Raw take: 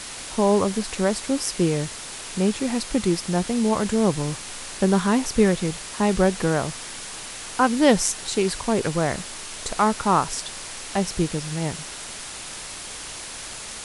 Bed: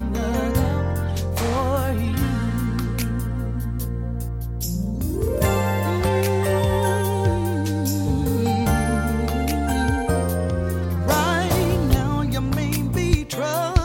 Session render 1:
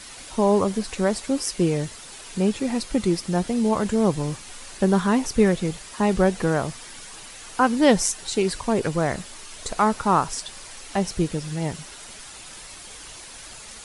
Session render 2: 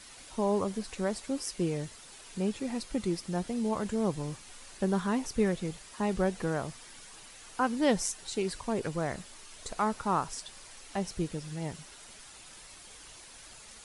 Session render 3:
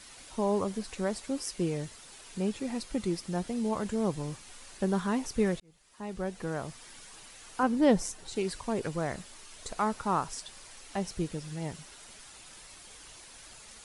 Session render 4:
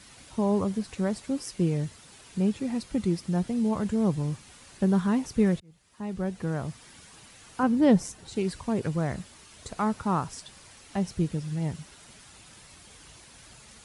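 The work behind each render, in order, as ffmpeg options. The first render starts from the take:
-af "afftdn=nr=8:nf=-36"
-af "volume=0.335"
-filter_complex "[0:a]asettb=1/sr,asplit=3[s0][s1][s2];[s0]atrim=end=7.634[s3];[s1]atrim=start=7.63:end=8.36,asetpts=PTS-STARTPTS,afade=t=in:d=0.004:c=qsin,afade=t=out:st=0.726:d=0.004:c=qsin,tiltshelf=f=1100:g=4.5[s4];[s2]atrim=start=8.356[s5];[s3][s4]acrossfade=d=0.004:c1=hsin:c2=qsin[s6];[s6][s5]acrossfade=d=0.004:c1=qsin:c2=hsin,asplit=2[s7][s8];[s7]atrim=end=5.6,asetpts=PTS-STARTPTS,afade=t=out:st=5.596:d=0.004:c=hsin[s9];[s8]atrim=start=5.6,asetpts=PTS-STARTPTS,afade=t=in:d=1.29[s10];[s9][s10]concat=n=2:v=0:a=1"
-af "highpass=66,bass=f=250:g=10,treble=f=4000:g=-2"

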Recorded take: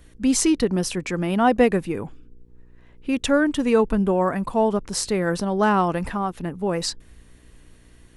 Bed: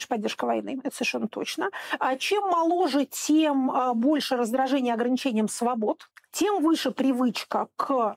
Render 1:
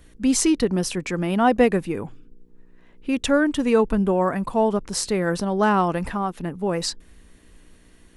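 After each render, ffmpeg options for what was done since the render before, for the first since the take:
-af "bandreject=f=60:t=h:w=4,bandreject=f=120:t=h:w=4"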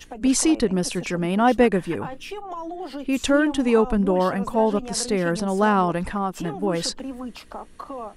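-filter_complex "[1:a]volume=0.316[s0];[0:a][s0]amix=inputs=2:normalize=0"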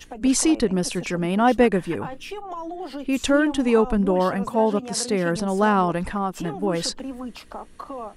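-filter_complex "[0:a]asettb=1/sr,asplit=3[s0][s1][s2];[s0]atrim=end=4.474[s3];[s1]atrim=start=4.47:end=5.36,asetpts=PTS-STARTPTS,afade=t=in:d=0.004:c=qsin,afade=t=out:st=0.886:d=0.004:c=qsin,highpass=f=78:w=0.5412,highpass=f=78:w=1.3066[s4];[s2]atrim=start=5.356[s5];[s3][s4]acrossfade=d=0.004:c1=hsin:c2=qsin[s6];[s6][s5]acrossfade=d=0.004:c1=qsin:c2=hsin"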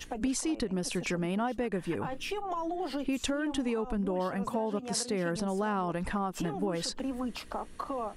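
-af "alimiter=limit=0.237:level=0:latency=1:release=191,acompressor=threshold=0.0355:ratio=5"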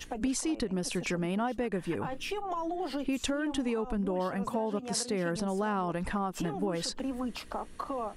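-af anull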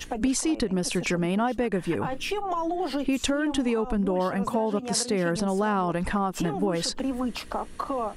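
-af "volume=2"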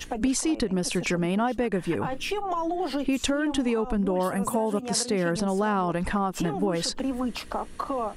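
-filter_complex "[0:a]asettb=1/sr,asplit=3[s0][s1][s2];[s0]atrim=end=4.234[s3];[s1]atrim=start=4.23:end=4.81,asetpts=PTS-STARTPTS,afade=t=in:d=0.004:c=qsin,afade=t=out:st=0.576:d=0.004:c=qsin,highshelf=f=6800:t=q:w=1.5:g=11.5[s4];[s2]atrim=start=4.806[s5];[s3][s4]acrossfade=d=0.004:c1=hsin:c2=qsin[s6];[s6][s5]acrossfade=d=0.004:c1=qsin:c2=hsin"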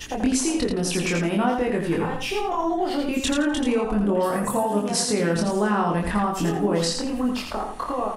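-filter_complex "[0:a]asplit=2[s0][s1];[s1]adelay=24,volume=0.794[s2];[s0][s2]amix=inputs=2:normalize=0,aecho=1:1:84|168|252:0.562|0.141|0.0351"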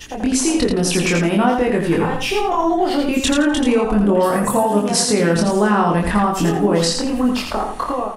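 -af "dynaudnorm=f=130:g=5:m=2.24"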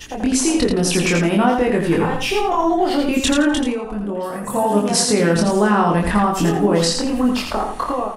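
-filter_complex "[0:a]asplit=3[s0][s1][s2];[s0]atrim=end=3.77,asetpts=PTS-STARTPTS,afade=t=out:st=3.55:d=0.22:silence=0.334965[s3];[s1]atrim=start=3.77:end=4.46,asetpts=PTS-STARTPTS,volume=0.335[s4];[s2]atrim=start=4.46,asetpts=PTS-STARTPTS,afade=t=in:d=0.22:silence=0.334965[s5];[s3][s4][s5]concat=n=3:v=0:a=1"

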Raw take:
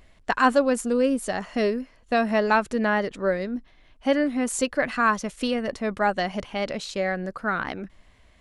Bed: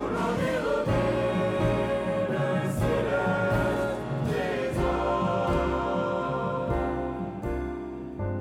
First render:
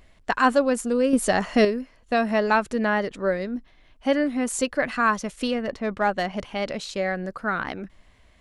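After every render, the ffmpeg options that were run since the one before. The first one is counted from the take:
-filter_complex "[0:a]asettb=1/sr,asplit=3[s0][s1][s2];[s0]atrim=end=1.134[s3];[s1]atrim=start=1.13:end=1.65,asetpts=PTS-STARTPTS,afade=t=in:d=0.004:c=qsin,afade=t=out:st=0.516:d=0.004:c=qsin,acontrast=75[s4];[s2]atrim=start=1.646[s5];[s3][s4]acrossfade=d=0.004:c1=hsin:c2=qsin[s6];[s6][s5]acrossfade=d=0.004:c1=qsin:c2=hsin,asettb=1/sr,asplit=3[s7][s8][s9];[s7]atrim=end=5.514[s10];[s8]atrim=start=5.51:end=6.37,asetpts=PTS-STARTPTS,afade=t=in:d=0.004:c=qsin,afade=t=out:st=0.856:d=0.004:c=qsin,adynamicsmooth=sensitivity=3:basefreq=4800[s11];[s9]atrim=start=6.366[s12];[s10][s11]acrossfade=d=0.004:c1=hsin:c2=qsin[s13];[s13][s12]acrossfade=d=0.004:c1=qsin:c2=hsin"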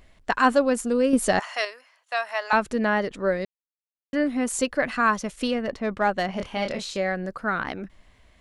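-filter_complex "[0:a]asettb=1/sr,asplit=3[s0][s1][s2];[s0]atrim=end=1.394[s3];[s1]atrim=start=1.39:end=2.53,asetpts=PTS-STARTPTS,afade=t=in:d=0.004:c=qsin,afade=t=out:st=1.136:d=0.004:c=qsin,highpass=f=760:w=0.5412,highpass=f=760:w=1.3066[s4];[s2]atrim=start=2.526[s5];[s3][s4]acrossfade=d=0.004:c1=hsin:c2=qsin[s6];[s6][s5]acrossfade=d=0.004:c1=qsin:c2=hsin,asettb=1/sr,asplit=3[s7][s8][s9];[s7]atrim=end=6.264[s10];[s8]atrim=start=6.26:end=6.97,asetpts=PTS-STARTPTS,afade=t=in:d=0.004:c=qsin,afade=t=out:st=0.706:d=0.004:c=qsin,asplit=2[s11][s12];[s12]adelay=26,volume=0.562[s13];[s11][s13]amix=inputs=2:normalize=0,atrim=end_sample=31311[s14];[s9]atrim=start=6.966[s15];[s10][s14]acrossfade=d=0.004:c1=hsin:c2=qsin[s16];[s16][s15]acrossfade=d=0.004:c1=qsin:c2=hsin,asplit=3[s17][s18][s19];[s17]atrim=end=3.45,asetpts=PTS-STARTPTS,afade=t=out:st=3.446:d=0.004:c=hsin[s20];[s18]atrim=start=3.45:end=4.13,asetpts=PTS-STARTPTS,volume=0[s21];[s19]atrim=start=4.13,asetpts=PTS-STARTPTS,afade=t=in:d=0.004:c=hsin[s22];[s20][s21][s22]concat=n=3:v=0:a=1"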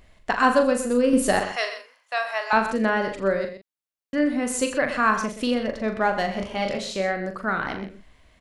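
-filter_complex "[0:a]asplit=2[s0][s1];[s1]adelay=41,volume=0.422[s2];[s0][s2]amix=inputs=2:normalize=0,aecho=1:1:82|125:0.178|0.266"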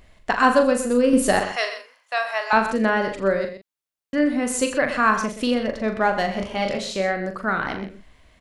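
-af "volume=1.26"

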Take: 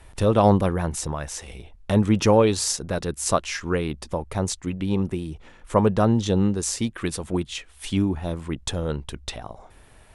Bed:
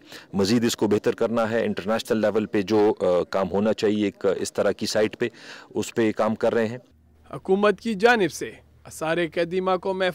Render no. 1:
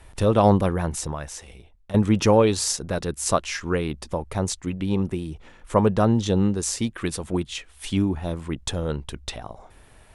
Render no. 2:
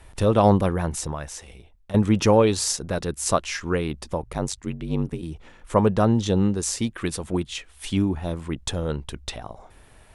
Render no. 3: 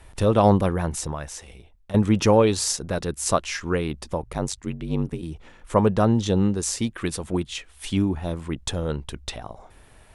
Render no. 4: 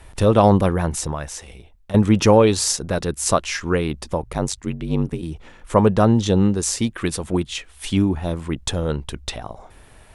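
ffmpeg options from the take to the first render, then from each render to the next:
-filter_complex "[0:a]asplit=2[s0][s1];[s0]atrim=end=1.94,asetpts=PTS-STARTPTS,afade=t=out:st=0.94:d=1:silence=0.188365[s2];[s1]atrim=start=1.94,asetpts=PTS-STARTPTS,afade=t=in:d=0.004:c=hsin:silence=0.188365[s3];[s2][s3]concat=n=2:v=0:a=1"
-filter_complex "[0:a]asplit=3[s0][s1][s2];[s0]afade=t=out:st=4.21:d=0.02[s3];[s1]aeval=exprs='val(0)*sin(2*PI*48*n/s)':c=same,afade=t=in:st=4.21:d=0.02,afade=t=out:st=5.21:d=0.02[s4];[s2]afade=t=in:st=5.21:d=0.02[s5];[s3][s4][s5]amix=inputs=3:normalize=0"
-af anull
-af "volume=1.58,alimiter=limit=0.708:level=0:latency=1"

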